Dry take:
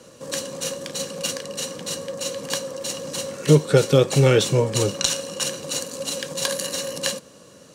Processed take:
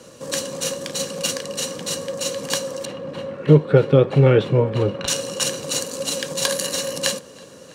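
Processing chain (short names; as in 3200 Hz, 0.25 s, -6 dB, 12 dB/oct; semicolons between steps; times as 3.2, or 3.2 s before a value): 2.85–5.08 air absorption 500 m; tape echo 0.326 s, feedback 88%, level -24 dB, low-pass 4100 Hz; gain +3 dB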